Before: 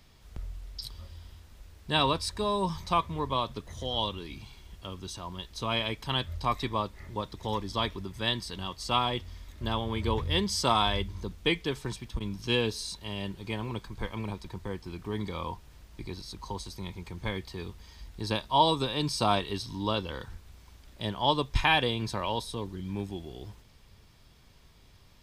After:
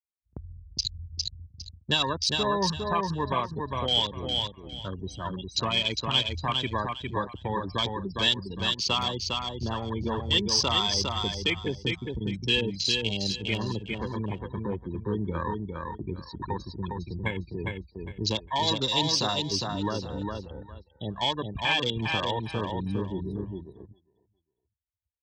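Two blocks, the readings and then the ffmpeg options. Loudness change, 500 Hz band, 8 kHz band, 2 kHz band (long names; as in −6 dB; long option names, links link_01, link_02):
+3.0 dB, +1.0 dB, +6.5 dB, +2.5 dB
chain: -filter_complex "[0:a]asplit=2[link_01][link_02];[link_02]acompressor=threshold=-37dB:ratio=6,volume=2dB[link_03];[link_01][link_03]amix=inputs=2:normalize=0,alimiter=limit=-17.5dB:level=0:latency=1:release=370,afftfilt=real='re*gte(hypot(re,im),0.0398)':imag='im*gte(hypot(re,im),0.0398)':win_size=1024:overlap=0.75,afwtdn=0.0126,aecho=1:1:406|812|1218:0.631|0.151|0.0363,acrossover=split=690|2000[link_04][link_05][link_06];[link_04]agate=range=-20dB:threshold=-38dB:ratio=16:detection=peak[link_07];[link_06]dynaudnorm=framelen=130:gausssize=11:maxgain=10dB[link_08];[link_07][link_05][link_08]amix=inputs=3:normalize=0,highpass=frequency=69:width=0.5412,highpass=frequency=69:width=1.3066" -ar 48000 -c:a aac -b:a 128k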